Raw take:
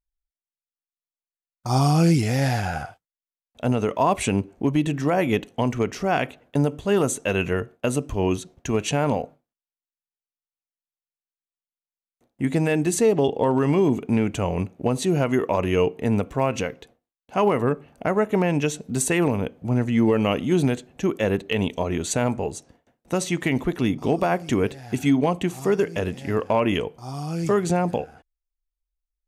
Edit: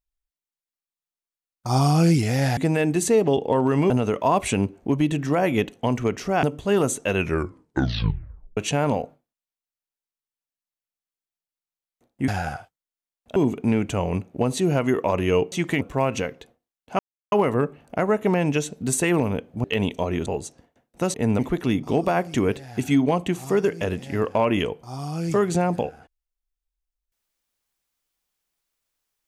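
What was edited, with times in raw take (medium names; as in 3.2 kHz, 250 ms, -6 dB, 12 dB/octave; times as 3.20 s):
2.57–3.65 s: swap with 12.48–13.81 s
6.18–6.63 s: delete
7.37 s: tape stop 1.40 s
15.97–16.22 s: swap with 23.25–23.54 s
17.40 s: insert silence 0.33 s
19.72–21.43 s: delete
22.05–22.37 s: delete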